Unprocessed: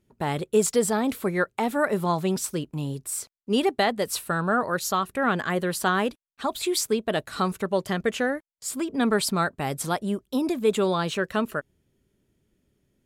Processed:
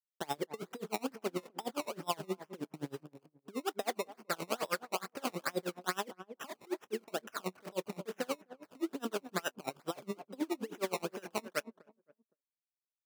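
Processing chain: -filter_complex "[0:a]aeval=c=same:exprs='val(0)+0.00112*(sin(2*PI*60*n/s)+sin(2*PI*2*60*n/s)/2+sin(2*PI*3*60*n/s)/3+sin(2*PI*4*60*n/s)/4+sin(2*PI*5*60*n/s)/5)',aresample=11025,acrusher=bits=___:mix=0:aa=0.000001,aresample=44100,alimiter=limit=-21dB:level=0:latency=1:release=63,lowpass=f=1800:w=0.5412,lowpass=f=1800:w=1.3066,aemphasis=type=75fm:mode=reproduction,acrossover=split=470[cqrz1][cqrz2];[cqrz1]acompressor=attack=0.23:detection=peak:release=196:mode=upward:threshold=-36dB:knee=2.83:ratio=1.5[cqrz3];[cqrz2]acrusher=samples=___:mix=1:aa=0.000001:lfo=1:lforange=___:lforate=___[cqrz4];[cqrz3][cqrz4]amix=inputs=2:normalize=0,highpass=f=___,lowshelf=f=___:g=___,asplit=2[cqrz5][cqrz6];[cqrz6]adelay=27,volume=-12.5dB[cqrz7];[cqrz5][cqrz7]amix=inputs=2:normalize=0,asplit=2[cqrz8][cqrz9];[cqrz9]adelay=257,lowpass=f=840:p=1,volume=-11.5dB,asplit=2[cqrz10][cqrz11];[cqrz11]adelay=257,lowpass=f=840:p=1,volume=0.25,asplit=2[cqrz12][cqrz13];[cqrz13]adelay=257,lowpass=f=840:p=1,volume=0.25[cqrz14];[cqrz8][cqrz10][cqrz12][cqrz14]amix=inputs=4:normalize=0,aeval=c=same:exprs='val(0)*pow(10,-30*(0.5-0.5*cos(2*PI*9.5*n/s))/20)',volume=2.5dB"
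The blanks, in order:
6, 19, 19, 2.3, 250, 490, -6.5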